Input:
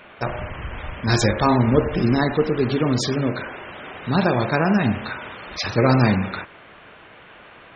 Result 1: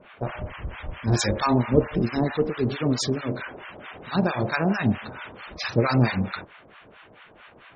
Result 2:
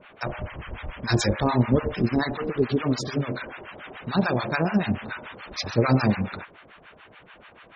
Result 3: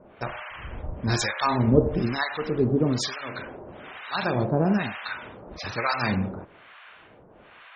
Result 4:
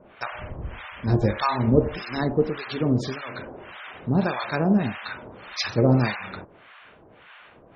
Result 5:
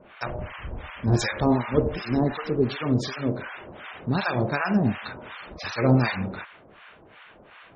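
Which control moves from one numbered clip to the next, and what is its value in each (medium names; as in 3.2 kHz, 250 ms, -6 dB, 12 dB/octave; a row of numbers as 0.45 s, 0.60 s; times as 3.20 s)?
harmonic tremolo, rate: 4.5 Hz, 6.9 Hz, 1.1 Hz, 1.7 Hz, 2.7 Hz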